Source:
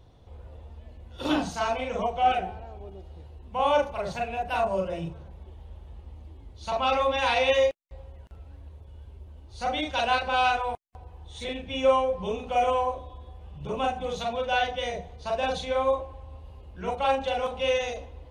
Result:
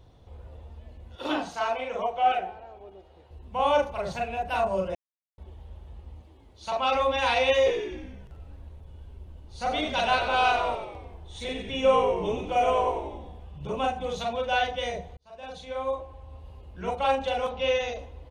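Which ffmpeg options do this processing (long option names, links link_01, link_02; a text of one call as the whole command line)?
ffmpeg -i in.wav -filter_complex "[0:a]asettb=1/sr,asplit=3[link_01][link_02][link_03];[link_01]atrim=end=1.154[link_04];[link_02]atrim=start=1.15:end=3.31,asetpts=PTS-STARTPTS,afade=type=in:duration=0.004:curve=qsin,afade=type=out:start_time=2.156:duration=0.004:curve=qsin,bass=frequency=250:gain=-14,treble=frequency=4000:gain=-7[link_05];[link_03]atrim=start=3.306[link_06];[link_04][link_05]acrossfade=duration=0.004:curve1=hsin:curve2=qsin[link_07];[link_07][link_06]acrossfade=duration=0.004:curve1=qsin:curve2=hsin,asettb=1/sr,asplit=3[link_08][link_09][link_10];[link_08]atrim=end=6.214[link_11];[link_09]atrim=start=6.21:end=6.95,asetpts=PTS-STARTPTS,afade=type=in:duration=0.004:curve=qsin,afade=type=out:start_time=0.736:duration=0.004:curve=qsin,lowshelf=frequency=150:gain=-11.5[link_12];[link_10]atrim=start=6.946[link_13];[link_11][link_12]acrossfade=duration=0.004:curve1=hsin:curve2=qsin[link_14];[link_14][link_13]acrossfade=duration=0.004:curve1=qsin:curve2=hsin,asplit=3[link_15][link_16][link_17];[link_15]afade=type=out:start_time=7.65:duration=0.02[link_18];[link_16]asplit=8[link_19][link_20][link_21][link_22][link_23][link_24][link_25][link_26];[link_20]adelay=92,afreqshift=-56,volume=-8dB[link_27];[link_21]adelay=184,afreqshift=-112,volume=-13dB[link_28];[link_22]adelay=276,afreqshift=-168,volume=-18.1dB[link_29];[link_23]adelay=368,afreqshift=-224,volume=-23.1dB[link_30];[link_24]adelay=460,afreqshift=-280,volume=-28.1dB[link_31];[link_25]adelay=552,afreqshift=-336,volume=-33.2dB[link_32];[link_26]adelay=644,afreqshift=-392,volume=-38.2dB[link_33];[link_19][link_27][link_28][link_29][link_30][link_31][link_32][link_33]amix=inputs=8:normalize=0,afade=type=in:start_time=7.65:duration=0.02,afade=type=out:start_time=13.43:duration=0.02[link_34];[link_17]afade=type=in:start_time=13.43:duration=0.02[link_35];[link_18][link_34][link_35]amix=inputs=3:normalize=0,asettb=1/sr,asplit=3[link_36][link_37][link_38];[link_36]atrim=end=17.494[link_39];[link_37]atrim=start=17.49:end=17.99,asetpts=PTS-STARTPTS,afade=type=in:duration=0.004:curve=qsin,afade=type=out:start_time=0.496:duration=0.004:curve=qsin,lowpass=frequency=6000:width=0.5412,lowpass=frequency=6000:width=1.3066[link_40];[link_38]atrim=start=17.986[link_41];[link_39][link_40]acrossfade=duration=0.004:curve1=hsin:curve2=qsin[link_42];[link_42][link_41]acrossfade=duration=0.004:curve1=qsin:curve2=hsin,asplit=4[link_43][link_44][link_45][link_46];[link_43]atrim=end=4.95,asetpts=PTS-STARTPTS,afade=type=out:start_time=4.946:duration=0.004:curve=hsin[link_47];[link_44]atrim=start=4.95:end=5.38,asetpts=PTS-STARTPTS,volume=0[link_48];[link_45]atrim=start=5.38:end=15.17,asetpts=PTS-STARTPTS,afade=type=in:duration=0.004:curve=hsin,afade=type=out:start_time=9.786:duration=0.004:curve=hsin[link_49];[link_46]atrim=start=15.17,asetpts=PTS-STARTPTS,afade=type=in:duration=1.3[link_50];[link_47][link_48][link_49][link_50]concat=n=4:v=0:a=1" out.wav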